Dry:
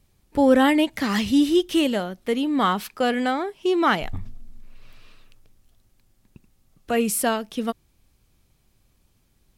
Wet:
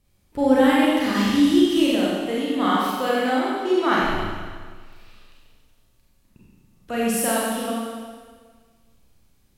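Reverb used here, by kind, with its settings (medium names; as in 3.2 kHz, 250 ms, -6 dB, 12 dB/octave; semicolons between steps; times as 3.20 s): Schroeder reverb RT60 1.6 s, combs from 31 ms, DRR -6.5 dB; trim -6 dB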